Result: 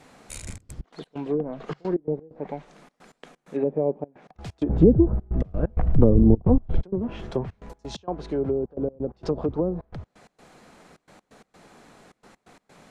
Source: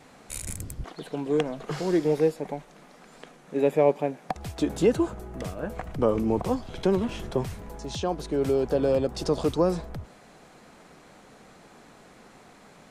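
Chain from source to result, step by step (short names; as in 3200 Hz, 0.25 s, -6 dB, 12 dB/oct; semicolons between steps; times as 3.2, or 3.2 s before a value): treble ducked by the level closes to 470 Hz, closed at -19.5 dBFS; 4.69–6.83 tilt -4.5 dB/oct; step gate "xxxxx.x.x." 130 bpm -24 dB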